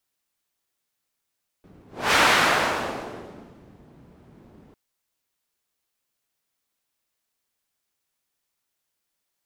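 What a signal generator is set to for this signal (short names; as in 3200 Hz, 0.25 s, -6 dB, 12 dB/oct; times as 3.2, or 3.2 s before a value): whoosh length 3.10 s, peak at 0.51, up 0.30 s, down 1.74 s, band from 210 Hz, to 1600 Hz, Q 0.81, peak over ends 34 dB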